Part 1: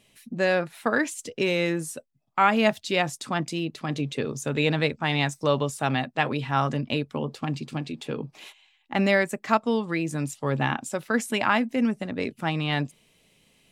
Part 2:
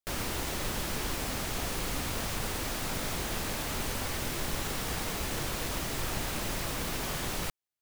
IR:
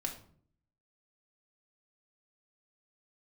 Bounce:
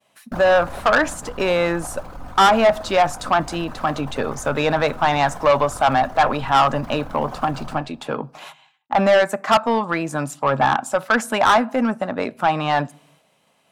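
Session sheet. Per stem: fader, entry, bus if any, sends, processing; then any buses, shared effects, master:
+2.5 dB, 0.00 s, send −18 dB, high-pass filter 120 Hz
+0.5 dB, 0.25 s, send −9.5 dB, spectral envelope exaggerated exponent 2; automatic ducking −13 dB, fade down 1.40 s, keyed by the first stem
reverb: on, RT60 0.55 s, pre-delay 4 ms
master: downward expander −53 dBFS; flat-topped bell 950 Hz +12.5 dB; soft clipping −9 dBFS, distortion −7 dB

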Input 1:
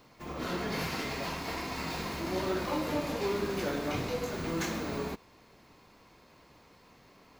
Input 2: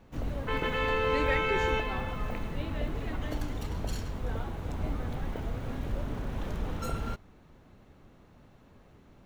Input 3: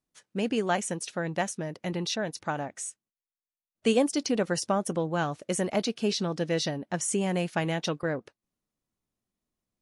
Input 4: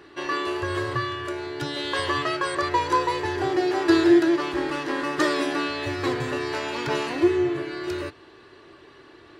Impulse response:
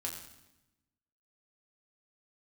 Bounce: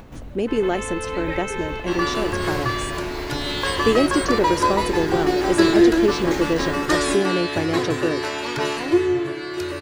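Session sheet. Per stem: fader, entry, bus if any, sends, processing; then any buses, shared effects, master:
+1.5 dB, 1.70 s, no send, no processing
−0.5 dB, 0.00 s, no send, automatic gain control gain up to 8.5 dB; automatic ducking −9 dB, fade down 0.35 s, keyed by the third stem
−1.0 dB, 0.00 s, no send, parametric band 360 Hz +14 dB 0.77 octaves
+2.0 dB, 1.70 s, no send, high-shelf EQ 5,700 Hz +6.5 dB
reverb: not used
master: upward compression, threshold −30 dBFS

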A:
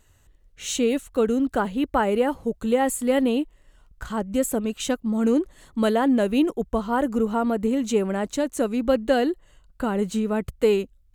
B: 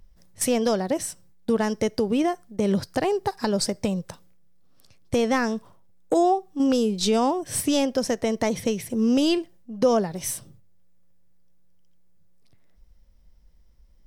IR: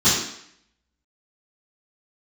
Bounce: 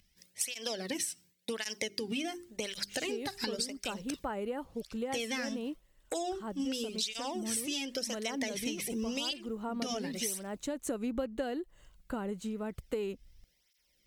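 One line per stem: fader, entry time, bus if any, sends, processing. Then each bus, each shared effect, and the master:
+2.0 dB, 2.30 s, no send, automatic ducking −14 dB, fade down 1.10 s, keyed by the second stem
−5.0 dB, 0.00 s, no send, high shelf with overshoot 1,600 Hz +12 dB, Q 1.5; mains-hum notches 50/100/150/200/250/300/350/400 Hz; through-zero flanger with one copy inverted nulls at 0.91 Hz, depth 2.2 ms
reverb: not used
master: downward compressor 8 to 1, threshold −32 dBFS, peak gain reduction 18 dB

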